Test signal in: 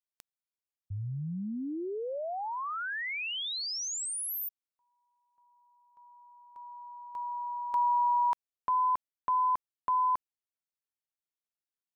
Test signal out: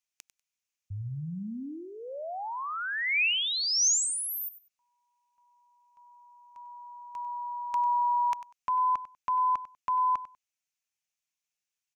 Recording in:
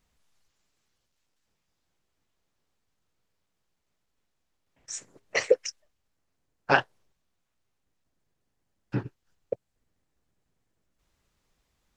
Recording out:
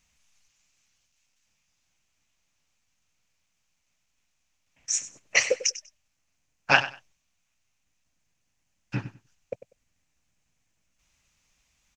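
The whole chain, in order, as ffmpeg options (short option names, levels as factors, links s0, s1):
-af "equalizer=f=400:t=o:w=0.67:g=-9,equalizer=f=2500:t=o:w=0.67:g=10,equalizer=f=6300:t=o:w=0.67:g=12,aecho=1:1:97|194:0.178|0.0338"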